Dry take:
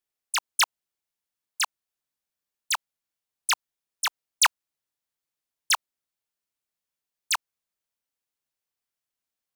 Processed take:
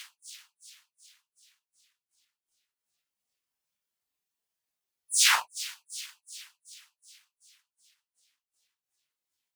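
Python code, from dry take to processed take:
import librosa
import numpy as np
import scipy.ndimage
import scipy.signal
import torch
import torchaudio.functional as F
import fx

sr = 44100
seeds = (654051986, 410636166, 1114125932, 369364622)

y = fx.echo_wet_highpass(x, sr, ms=94, feedback_pct=55, hz=2800.0, wet_db=-11.5)
y = fx.paulstretch(y, sr, seeds[0], factor=4.0, window_s=0.05, from_s=6.01)
y = fx.transient(y, sr, attack_db=6, sustain_db=-11)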